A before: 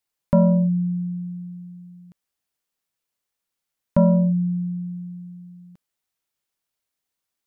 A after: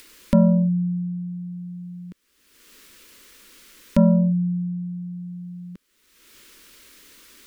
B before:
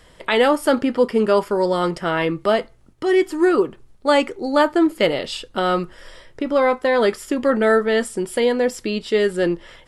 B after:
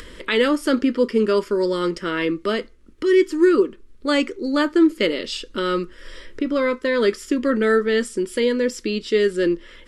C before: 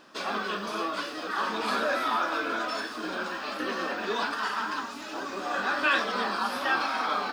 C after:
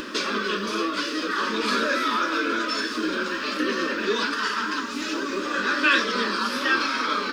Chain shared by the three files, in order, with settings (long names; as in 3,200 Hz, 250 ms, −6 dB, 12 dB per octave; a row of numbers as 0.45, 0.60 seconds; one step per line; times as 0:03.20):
high-shelf EQ 4,300 Hz −9 dB
upward compression, threshold −28 dBFS
phaser with its sweep stopped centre 310 Hz, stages 4
dynamic equaliser 5,900 Hz, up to +7 dB, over −52 dBFS, Q 1.4
normalise the peak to −6 dBFS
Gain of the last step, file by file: +6.0, +2.0, +9.0 decibels